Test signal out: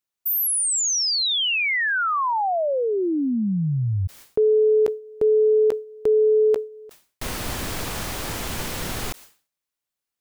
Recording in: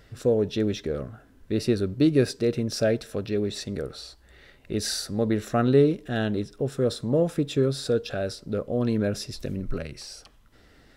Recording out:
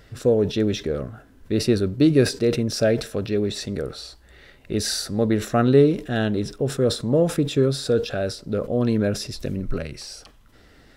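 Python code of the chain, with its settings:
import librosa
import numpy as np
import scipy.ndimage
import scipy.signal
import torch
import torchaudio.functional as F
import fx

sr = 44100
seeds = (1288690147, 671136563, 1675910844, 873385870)

y = fx.sustainer(x, sr, db_per_s=150.0)
y = y * librosa.db_to_amplitude(3.5)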